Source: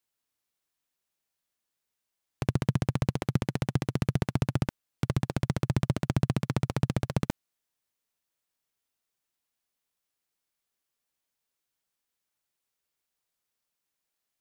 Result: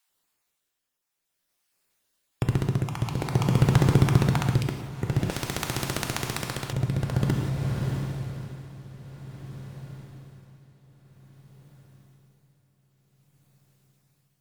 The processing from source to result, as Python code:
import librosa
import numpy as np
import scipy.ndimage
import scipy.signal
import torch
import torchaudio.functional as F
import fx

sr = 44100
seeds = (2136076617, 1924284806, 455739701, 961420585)

p1 = fx.spec_dropout(x, sr, seeds[0], share_pct=23)
p2 = fx.rider(p1, sr, range_db=10, speed_s=0.5)
p3 = p1 + (p2 * 10.0 ** (2.0 / 20.0))
p4 = fx.fold_sine(p3, sr, drive_db=6, ceiling_db=-3.5)
p5 = p4 + fx.echo_diffused(p4, sr, ms=651, feedback_pct=60, wet_db=-10.0, dry=0)
p6 = fx.rev_gated(p5, sr, seeds[1], gate_ms=200, shape='flat', drr_db=3.0)
p7 = p6 * (1.0 - 0.64 / 2.0 + 0.64 / 2.0 * np.cos(2.0 * np.pi * 0.51 * (np.arange(len(p6)) / sr)))
p8 = fx.spectral_comp(p7, sr, ratio=2.0, at=(5.3, 6.73))
y = p8 * 10.0 ** (-5.5 / 20.0)